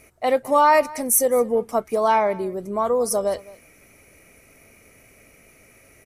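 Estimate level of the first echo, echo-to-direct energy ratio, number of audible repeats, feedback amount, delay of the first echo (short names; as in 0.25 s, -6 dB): -21.0 dB, -21.0 dB, 1, no steady repeat, 0.211 s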